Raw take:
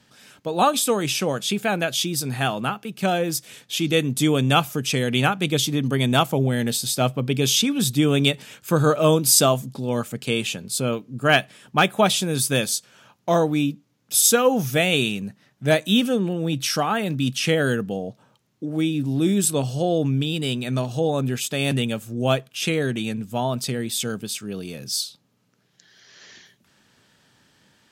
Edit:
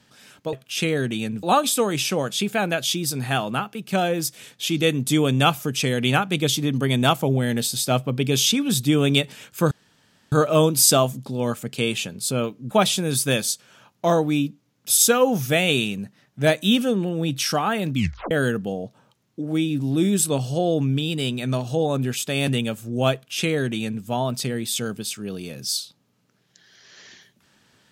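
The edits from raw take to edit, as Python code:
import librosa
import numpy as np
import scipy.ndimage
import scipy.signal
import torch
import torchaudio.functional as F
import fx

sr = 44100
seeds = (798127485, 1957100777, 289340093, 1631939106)

y = fx.edit(x, sr, fx.insert_room_tone(at_s=8.81, length_s=0.61),
    fx.cut(start_s=11.2, length_s=0.75),
    fx.tape_stop(start_s=17.19, length_s=0.36),
    fx.duplicate(start_s=22.38, length_s=0.9, to_s=0.53), tone=tone)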